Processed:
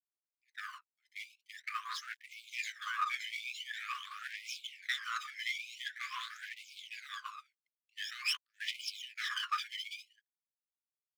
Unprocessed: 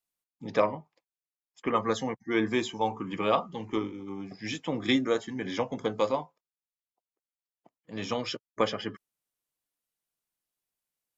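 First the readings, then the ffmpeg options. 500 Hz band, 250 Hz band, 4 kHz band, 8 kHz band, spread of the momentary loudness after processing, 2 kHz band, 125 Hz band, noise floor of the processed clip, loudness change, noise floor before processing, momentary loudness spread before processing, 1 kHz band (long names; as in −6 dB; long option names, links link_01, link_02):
below −40 dB, below −40 dB, −1.0 dB, can't be measured, 13 LU, 0.0 dB, below −40 dB, below −85 dBFS, −9.0 dB, below −85 dBFS, 12 LU, −8.5 dB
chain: -af "adynamicequalizer=threshold=0.00398:dfrequency=1700:dqfactor=3:tfrequency=1700:tqfactor=3:attack=5:release=100:ratio=0.375:range=2:mode=boostabove:tftype=bell,aecho=1:1:570|912|1117|1240|1314:0.631|0.398|0.251|0.158|0.1,areverse,acompressor=threshold=-33dB:ratio=8,areverse,highpass=250,lowpass=6000,aeval=exprs='sgn(val(0))*max(abs(val(0))-0.00126,0)':channel_layout=same,aphaser=in_gain=1:out_gain=1:delay=1:decay=0.76:speed=0.46:type=triangular,agate=range=-16dB:threshold=-43dB:ratio=16:detection=peak,aeval=exprs='clip(val(0),-1,0.0158)':channel_layout=same,equalizer=frequency=710:width=1.2:gain=10,afftfilt=real='re*gte(b*sr/1024,990*pow(2200/990,0.5+0.5*sin(2*PI*0.93*pts/sr)))':imag='im*gte(b*sr/1024,990*pow(2200/990,0.5+0.5*sin(2*PI*0.93*pts/sr)))':win_size=1024:overlap=0.75,volume=2.5dB"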